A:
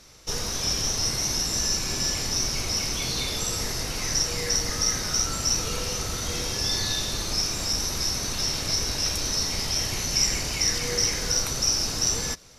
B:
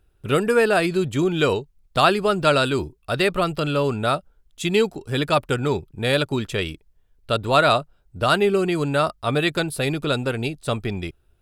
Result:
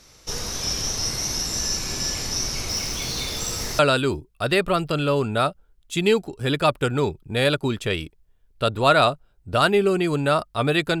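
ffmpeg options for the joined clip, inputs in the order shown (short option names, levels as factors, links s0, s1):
-filter_complex "[0:a]asettb=1/sr,asplit=3[s0][s1][s2];[s0]atrim=end=2.694[s3];[s1]atrim=start=2.69:end=3.79,asetpts=PTS-STARTPTS,afade=t=in:d=0.004:c=qsin,afade=t=out:st=1.096:d=0.004:c=qsin,acrusher=bits=4:mode=log:mix=0:aa=0.000001[s4];[s2]atrim=start=3.786[s5];[s3][s4]acrossfade=d=0.004:c1=hsin:c2=qsin[s6];[s6][s5]acrossfade=d=0.004:c1=qsin:c2=hsin,apad=whole_dur=11,atrim=end=11,atrim=end=3.792[s7];[1:a]atrim=start=2.468:end=9.68[s8];[s7][s8]acrossfade=d=0.004:c1=hsin:c2=hsin"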